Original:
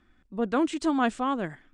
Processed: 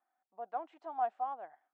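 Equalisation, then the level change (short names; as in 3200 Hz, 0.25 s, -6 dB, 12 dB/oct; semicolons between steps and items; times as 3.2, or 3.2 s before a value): ladder band-pass 790 Hz, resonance 80%; -4.5 dB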